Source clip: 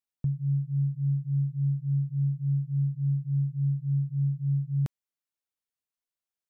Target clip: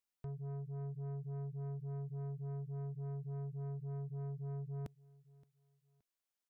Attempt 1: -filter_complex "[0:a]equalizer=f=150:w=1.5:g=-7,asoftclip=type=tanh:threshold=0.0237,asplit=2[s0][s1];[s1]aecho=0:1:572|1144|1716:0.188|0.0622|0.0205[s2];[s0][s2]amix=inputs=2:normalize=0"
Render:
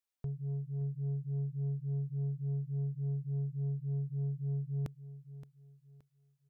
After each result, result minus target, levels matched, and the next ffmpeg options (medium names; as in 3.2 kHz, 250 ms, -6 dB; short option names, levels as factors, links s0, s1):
echo-to-direct +8.5 dB; saturation: distortion -8 dB
-filter_complex "[0:a]equalizer=f=150:w=1.5:g=-7,asoftclip=type=tanh:threshold=0.0237,asplit=2[s0][s1];[s1]aecho=0:1:572|1144:0.0708|0.0234[s2];[s0][s2]amix=inputs=2:normalize=0"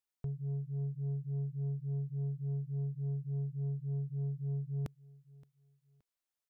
saturation: distortion -8 dB
-filter_complex "[0:a]equalizer=f=150:w=1.5:g=-7,asoftclip=type=tanh:threshold=0.00891,asplit=2[s0][s1];[s1]aecho=0:1:572|1144:0.0708|0.0234[s2];[s0][s2]amix=inputs=2:normalize=0"